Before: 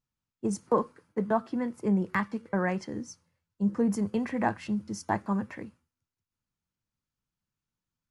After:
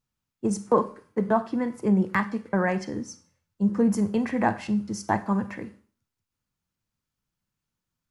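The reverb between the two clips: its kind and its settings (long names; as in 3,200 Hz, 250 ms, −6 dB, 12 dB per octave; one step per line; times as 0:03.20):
four-comb reverb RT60 0.42 s, combs from 31 ms, DRR 13 dB
level +4 dB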